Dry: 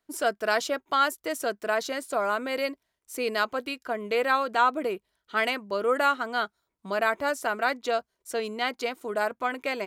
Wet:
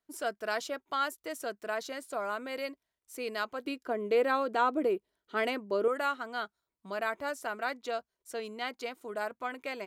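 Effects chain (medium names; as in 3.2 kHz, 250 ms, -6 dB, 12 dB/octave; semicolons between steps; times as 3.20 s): 3.65–5.88 s: peaking EQ 350 Hz +10.5 dB 1.7 oct; trim -8 dB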